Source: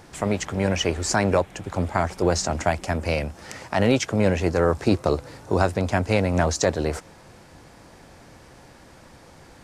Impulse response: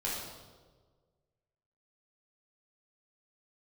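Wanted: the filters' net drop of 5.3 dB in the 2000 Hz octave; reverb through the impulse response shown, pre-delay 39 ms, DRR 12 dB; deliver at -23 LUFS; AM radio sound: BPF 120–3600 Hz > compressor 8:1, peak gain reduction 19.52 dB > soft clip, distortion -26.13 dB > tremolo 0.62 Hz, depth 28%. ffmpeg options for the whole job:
-filter_complex "[0:a]equalizer=f=2k:t=o:g=-6.5,asplit=2[a][b];[1:a]atrim=start_sample=2205,adelay=39[c];[b][c]afir=irnorm=-1:irlink=0,volume=-17dB[d];[a][d]amix=inputs=2:normalize=0,highpass=120,lowpass=3.6k,acompressor=threshold=-35dB:ratio=8,asoftclip=threshold=-22.5dB,tremolo=f=0.62:d=0.28,volume=19dB"

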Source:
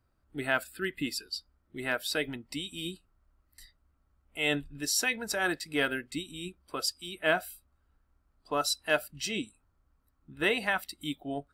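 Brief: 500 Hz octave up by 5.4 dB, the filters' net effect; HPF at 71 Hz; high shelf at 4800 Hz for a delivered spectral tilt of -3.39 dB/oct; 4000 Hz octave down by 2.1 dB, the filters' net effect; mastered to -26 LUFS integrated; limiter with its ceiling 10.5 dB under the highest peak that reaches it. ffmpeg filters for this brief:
-af "highpass=71,equalizer=f=500:t=o:g=7,equalizer=f=4k:t=o:g=-6.5,highshelf=f=4.8k:g=6.5,volume=7dB,alimiter=limit=-12.5dB:level=0:latency=1"

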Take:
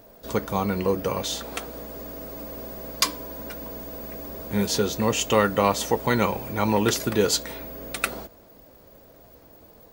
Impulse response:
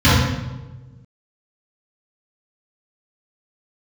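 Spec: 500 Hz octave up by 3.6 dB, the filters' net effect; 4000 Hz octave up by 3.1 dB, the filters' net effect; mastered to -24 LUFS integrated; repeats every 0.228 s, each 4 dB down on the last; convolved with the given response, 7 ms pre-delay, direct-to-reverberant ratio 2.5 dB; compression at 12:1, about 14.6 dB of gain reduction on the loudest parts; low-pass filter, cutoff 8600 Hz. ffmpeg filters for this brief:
-filter_complex "[0:a]lowpass=8.6k,equalizer=f=500:t=o:g=4,equalizer=f=4k:t=o:g=4,acompressor=threshold=-28dB:ratio=12,aecho=1:1:228|456|684|912|1140|1368|1596|1824|2052:0.631|0.398|0.25|0.158|0.0994|0.0626|0.0394|0.0249|0.0157,asplit=2[a][b];[1:a]atrim=start_sample=2205,adelay=7[c];[b][c]afir=irnorm=-1:irlink=0,volume=-29dB[d];[a][d]amix=inputs=2:normalize=0,volume=2.5dB"

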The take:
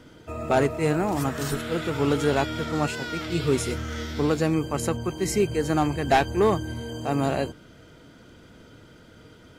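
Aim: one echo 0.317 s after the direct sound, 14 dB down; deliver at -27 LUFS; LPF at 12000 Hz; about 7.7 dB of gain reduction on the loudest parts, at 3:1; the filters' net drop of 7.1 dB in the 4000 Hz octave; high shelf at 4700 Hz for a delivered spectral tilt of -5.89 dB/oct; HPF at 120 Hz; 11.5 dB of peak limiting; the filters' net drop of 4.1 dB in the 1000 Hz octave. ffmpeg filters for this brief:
-af "highpass=120,lowpass=12k,equalizer=f=1k:t=o:g=-5.5,equalizer=f=4k:t=o:g=-7,highshelf=f=4.7k:g=-4.5,acompressor=threshold=-28dB:ratio=3,alimiter=level_in=3.5dB:limit=-24dB:level=0:latency=1,volume=-3.5dB,aecho=1:1:317:0.2,volume=9.5dB"

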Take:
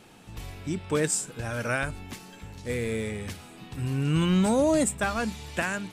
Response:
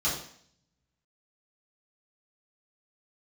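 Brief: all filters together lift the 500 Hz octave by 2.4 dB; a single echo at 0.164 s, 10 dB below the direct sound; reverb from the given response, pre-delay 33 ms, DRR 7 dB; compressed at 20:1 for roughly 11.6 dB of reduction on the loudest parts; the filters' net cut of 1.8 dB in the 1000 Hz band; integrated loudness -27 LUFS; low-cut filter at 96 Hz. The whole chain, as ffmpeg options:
-filter_complex "[0:a]highpass=96,equalizer=f=500:t=o:g=4,equalizer=f=1k:t=o:g=-4,acompressor=threshold=-29dB:ratio=20,aecho=1:1:164:0.316,asplit=2[a][b];[1:a]atrim=start_sample=2205,adelay=33[c];[b][c]afir=irnorm=-1:irlink=0,volume=-16.5dB[d];[a][d]amix=inputs=2:normalize=0,volume=6.5dB"

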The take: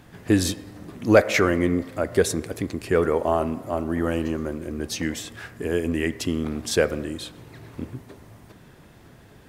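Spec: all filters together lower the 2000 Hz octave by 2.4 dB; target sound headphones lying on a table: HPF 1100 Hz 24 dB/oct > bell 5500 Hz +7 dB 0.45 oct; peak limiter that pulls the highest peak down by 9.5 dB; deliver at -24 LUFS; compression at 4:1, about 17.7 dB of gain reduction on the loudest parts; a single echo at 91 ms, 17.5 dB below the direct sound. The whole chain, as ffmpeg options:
-af "equalizer=f=2k:t=o:g=-3,acompressor=threshold=-32dB:ratio=4,alimiter=level_in=2.5dB:limit=-24dB:level=0:latency=1,volume=-2.5dB,highpass=f=1.1k:w=0.5412,highpass=f=1.1k:w=1.3066,equalizer=f=5.5k:t=o:w=0.45:g=7,aecho=1:1:91:0.133,volume=17.5dB"

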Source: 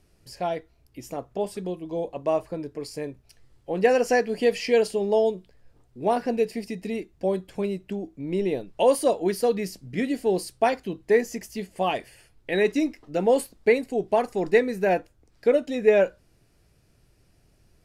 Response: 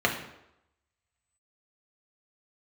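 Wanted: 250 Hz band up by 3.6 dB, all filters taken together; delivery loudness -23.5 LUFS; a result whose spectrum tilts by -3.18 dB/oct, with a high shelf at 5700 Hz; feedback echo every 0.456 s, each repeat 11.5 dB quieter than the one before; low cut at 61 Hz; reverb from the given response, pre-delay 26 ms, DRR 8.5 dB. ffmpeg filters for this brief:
-filter_complex "[0:a]highpass=61,equalizer=f=250:t=o:g=4.5,highshelf=f=5.7k:g=-7.5,aecho=1:1:456|912|1368:0.266|0.0718|0.0194,asplit=2[a][b];[1:a]atrim=start_sample=2205,adelay=26[c];[b][c]afir=irnorm=-1:irlink=0,volume=-22.5dB[d];[a][d]amix=inputs=2:normalize=0"

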